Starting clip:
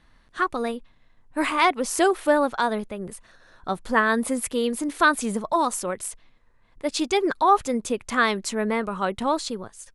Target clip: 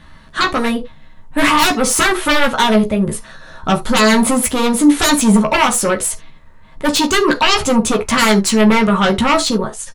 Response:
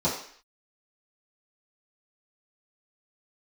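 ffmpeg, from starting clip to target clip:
-filter_complex "[0:a]aeval=exprs='0.501*sin(PI/2*5.62*val(0)/0.501)':c=same,asplit=2[s0][s1];[s1]adelay=14,volume=0.596[s2];[s0][s2]amix=inputs=2:normalize=0,asplit=2[s3][s4];[1:a]atrim=start_sample=2205,atrim=end_sample=3528[s5];[s4][s5]afir=irnorm=-1:irlink=0,volume=0.126[s6];[s3][s6]amix=inputs=2:normalize=0,volume=0.596"

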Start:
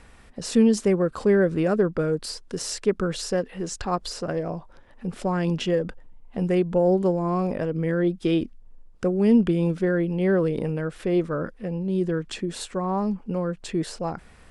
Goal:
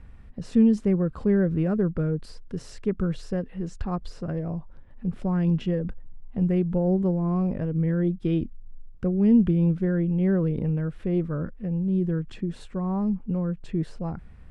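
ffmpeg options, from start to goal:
-af "bass=f=250:g=15,treble=f=4000:g=-11,volume=0.376"

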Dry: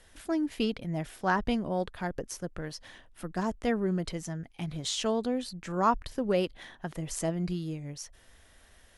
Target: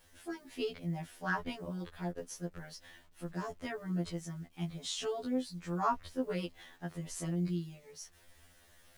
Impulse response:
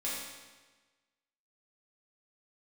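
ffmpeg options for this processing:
-af "adynamicequalizer=threshold=0.00224:dfrequency=140:dqfactor=5.9:tfrequency=140:tqfactor=5.9:attack=5:release=100:ratio=0.375:range=3:mode=cutabove:tftype=bell,acrusher=bits=9:mix=0:aa=0.000001,areverse,acompressor=mode=upward:threshold=0.00316:ratio=2.5,areverse,afftfilt=real='re*2*eq(mod(b,4),0)':imag='im*2*eq(mod(b,4),0)':win_size=2048:overlap=0.75,volume=0.631"

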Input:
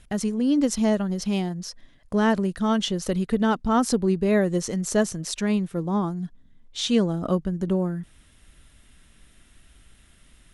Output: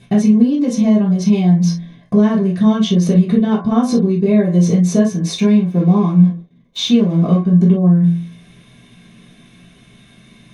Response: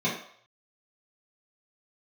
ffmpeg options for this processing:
-filter_complex "[0:a]bandreject=f=85.3:t=h:w=4,bandreject=f=170.6:t=h:w=4,bandreject=f=255.9:t=h:w=4,bandreject=f=341.2:t=h:w=4,bandreject=f=426.5:t=h:w=4,bandreject=f=511.8:t=h:w=4,bandreject=f=597.1:t=h:w=4,bandreject=f=682.4:t=h:w=4,bandreject=f=767.7:t=h:w=4,bandreject=f=853:t=h:w=4,bandreject=f=938.3:t=h:w=4,bandreject=f=1023.6:t=h:w=4,bandreject=f=1108.9:t=h:w=4,bandreject=f=1194.2:t=h:w=4,bandreject=f=1279.5:t=h:w=4,bandreject=f=1364.8:t=h:w=4,bandreject=f=1450.1:t=h:w=4,bandreject=f=1535.4:t=h:w=4,bandreject=f=1620.7:t=h:w=4,bandreject=f=1706:t=h:w=4,bandreject=f=1791.3:t=h:w=4,bandreject=f=1876.6:t=h:w=4,bandreject=f=1961.9:t=h:w=4,bandreject=f=2047.2:t=h:w=4,bandreject=f=2132.5:t=h:w=4,bandreject=f=2217.8:t=h:w=4,bandreject=f=2303.1:t=h:w=4,acompressor=threshold=0.0398:ratio=6,asettb=1/sr,asplit=3[s0][s1][s2];[s0]atrim=end=5.334[s3];[s1]atrim=start=5.33:end=7.45,asetpts=PTS-STARTPTS,afade=t=in:d=0.004:c=qsin,afade=t=out:st=2.116:d=0.004:c=qsin,aeval=exprs='sgn(val(0))*max(abs(val(0))-0.00376,0)':c=same[s4];[s2]atrim=start=7.446[s5];[s3][s4]acrossfade=d=0.004:c1=hsin:c2=qsin[s6];[s6][s5]acrossfade=d=0.004:c1=qsin:c2=hsin[s7];[1:a]atrim=start_sample=2205,atrim=end_sample=3087[s8];[s7][s8]afir=irnorm=-1:irlink=0,volume=1.19"

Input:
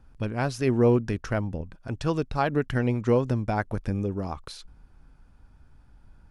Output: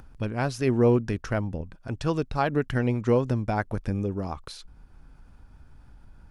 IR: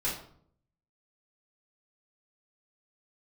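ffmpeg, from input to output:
-af "acompressor=mode=upward:threshold=0.00794:ratio=2.5"

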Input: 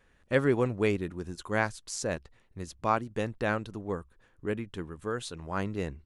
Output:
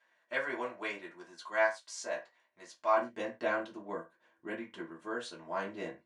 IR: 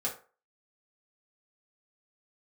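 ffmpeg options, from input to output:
-filter_complex "[0:a]asetnsamples=n=441:p=0,asendcmd='2.97 highpass f 340',highpass=680,lowpass=6400[s0];[1:a]atrim=start_sample=2205,afade=t=out:st=0.22:d=0.01,atrim=end_sample=10143,asetrate=57330,aresample=44100[s1];[s0][s1]afir=irnorm=-1:irlink=0,volume=0.668"

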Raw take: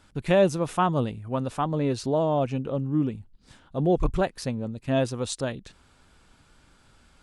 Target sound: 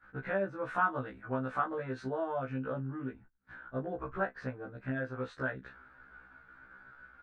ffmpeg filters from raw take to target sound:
-filter_complex "[0:a]aecho=1:1:15|35:0.266|0.126,acompressor=threshold=0.0316:ratio=5,lowpass=f=1500:t=q:w=6.7,lowshelf=f=220:g=-7.5,agate=range=0.112:threshold=0.00224:ratio=16:detection=peak,asettb=1/sr,asplit=3[s0][s1][s2];[s0]atrim=end=0.644[s3];[s1]atrim=start=0.64:end=3.12,asetpts=PTS-STARTPTS,afade=t=in:d=0.004:c=qsin,afade=t=out:st=2.476:d=0.004:c=qsin,aemphasis=mode=production:type=75kf[s4];[s2]atrim=start=3.116[s5];[s3][s4]acrossfade=d=0.004:c1=hsin:c2=qsin[s6];[s6][s5]acrossfade=d=0.004:c1=qsin:c2=hsin,afftfilt=real='re*1.73*eq(mod(b,3),0)':imag='im*1.73*eq(mod(b,3),0)':win_size=2048:overlap=0.75"

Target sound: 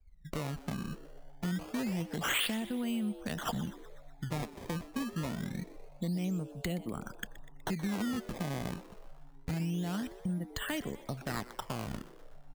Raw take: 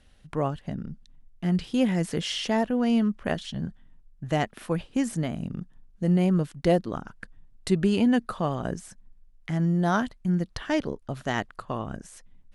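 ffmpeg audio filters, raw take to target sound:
-filter_complex "[0:a]afftdn=nr=31:nf=-45,lowpass=f=3900:w=0.5412,lowpass=f=3900:w=1.3066,adynamicequalizer=threshold=0.0178:dfrequency=210:dqfactor=3.4:tfrequency=210:tqfactor=3.4:attack=5:release=100:ratio=0.375:range=2.5:mode=boostabove:tftype=bell,acrossover=split=490|3000[s0][s1][s2];[s1]acompressor=threshold=0.0398:ratio=10[s3];[s0][s3][s2]amix=inputs=3:normalize=0,acrossover=split=210|2200[s4][s5][s6];[s5]alimiter=limit=0.0631:level=0:latency=1:release=201[s7];[s4][s7][s6]amix=inputs=3:normalize=0,acompressor=threshold=0.0158:ratio=4,crystalizer=i=5:c=0,aresample=11025,volume=21.1,asoftclip=hard,volume=0.0473,aresample=44100,acrusher=samples=18:mix=1:aa=0.000001:lfo=1:lforange=28.8:lforate=0.26,asoftclip=type=tanh:threshold=0.0668,asplit=7[s8][s9][s10][s11][s12][s13][s14];[s9]adelay=123,afreqshift=130,volume=0.141[s15];[s10]adelay=246,afreqshift=260,volume=0.0832[s16];[s11]adelay=369,afreqshift=390,volume=0.049[s17];[s12]adelay=492,afreqshift=520,volume=0.0292[s18];[s13]adelay=615,afreqshift=650,volume=0.0172[s19];[s14]adelay=738,afreqshift=780,volume=0.0101[s20];[s8][s15][s16][s17][s18][s19][s20]amix=inputs=7:normalize=0,volume=1.19"

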